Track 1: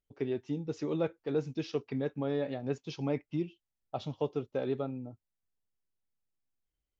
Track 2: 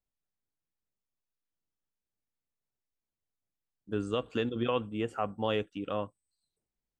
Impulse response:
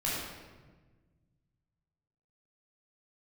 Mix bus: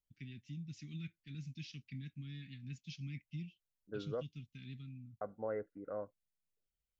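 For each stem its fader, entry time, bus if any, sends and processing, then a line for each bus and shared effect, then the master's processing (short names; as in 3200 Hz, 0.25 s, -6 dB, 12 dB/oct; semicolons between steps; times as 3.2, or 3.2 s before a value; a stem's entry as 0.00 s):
-4.5 dB, 0.00 s, no send, Chebyshev band-stop 200–2200 Hz, order 3
-6.0 dB, 0.00 s, muted 4.23–5.21, no send, rippled Chebyshev low-pass 2100 Hz, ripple 9 dB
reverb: off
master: dry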